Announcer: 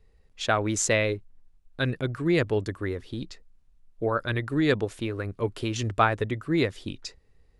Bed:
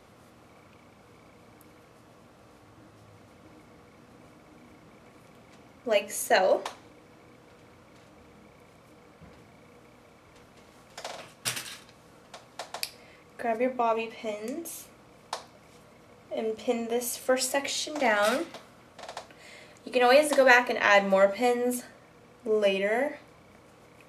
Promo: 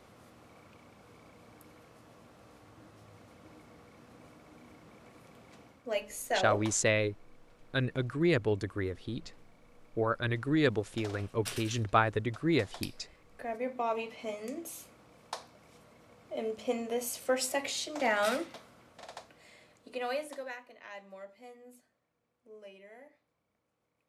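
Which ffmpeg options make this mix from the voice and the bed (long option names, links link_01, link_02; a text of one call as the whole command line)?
ffmpeg -i stem1.wav -i stem2.wav -filter_complex "[0:a]adelay=5950,volume=-4dB[link_01];[1:a]volume=2dB,afade=type=out:start_time=5.6:duration=0.23:silence=0.473151,afade=type=in:start_time=13.61:duration=0.49:silence=0.630957,afade=type=out:start_time=18.74:duration=1.82:silence=0.0794328[link_02];[link_01][link_02]amix=inputs=2:normalize=0" out.wav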